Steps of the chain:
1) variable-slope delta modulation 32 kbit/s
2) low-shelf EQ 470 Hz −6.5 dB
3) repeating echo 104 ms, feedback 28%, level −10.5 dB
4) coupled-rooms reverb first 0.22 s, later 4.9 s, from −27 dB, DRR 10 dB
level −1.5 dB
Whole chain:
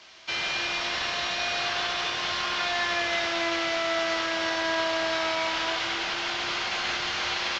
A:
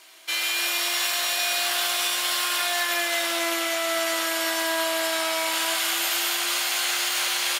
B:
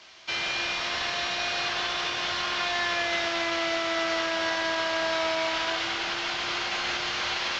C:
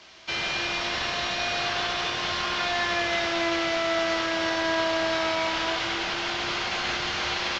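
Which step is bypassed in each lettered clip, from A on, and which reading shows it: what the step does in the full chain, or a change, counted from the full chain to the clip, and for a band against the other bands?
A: 1, 8 kHz band +13.5 dB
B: 3, echo-to-direct ratio −7.0 dB to −10.0 dB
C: 2, 125 Hz band +5.0 dB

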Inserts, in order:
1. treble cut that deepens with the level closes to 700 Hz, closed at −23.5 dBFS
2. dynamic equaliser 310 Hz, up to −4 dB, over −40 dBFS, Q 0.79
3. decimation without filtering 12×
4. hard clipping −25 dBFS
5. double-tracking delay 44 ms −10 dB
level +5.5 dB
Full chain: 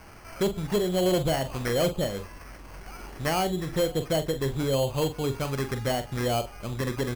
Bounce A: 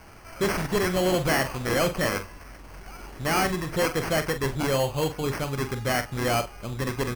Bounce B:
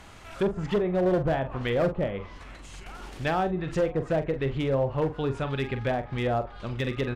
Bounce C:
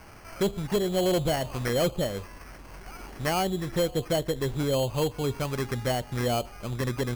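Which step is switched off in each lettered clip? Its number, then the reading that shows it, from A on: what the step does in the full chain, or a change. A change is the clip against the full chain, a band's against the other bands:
1, 2 kHz band +7.0 dB
3, distortion level −6 dB
5, change in crest factor −2.0 dB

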